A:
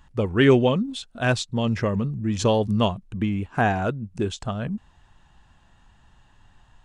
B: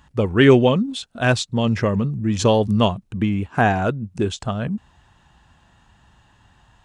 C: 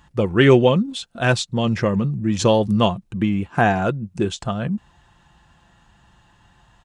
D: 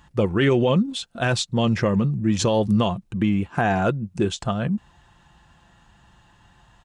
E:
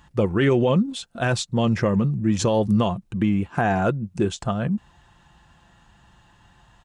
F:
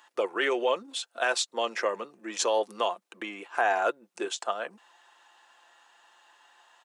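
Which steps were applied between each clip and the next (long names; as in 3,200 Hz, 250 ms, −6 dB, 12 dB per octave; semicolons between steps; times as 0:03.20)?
high-pass filter 51 Hz; level +4 dB
comb filter 5.8 ms, depth 31%
brickwall limiter −10.5 dBFS, peak gain reduction 8.5 dB
dynamic equaliser 3,500 Hz, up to −4 dB, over −41 dBFS, Q 1
Bessel high-pass filter 630 Hz, order 6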